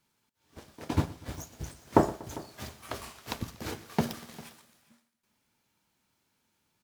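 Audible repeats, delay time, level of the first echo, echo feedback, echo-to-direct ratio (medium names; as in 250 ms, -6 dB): 4, 120 ms, -19.0 dB, no regular repeats, -15.5 dB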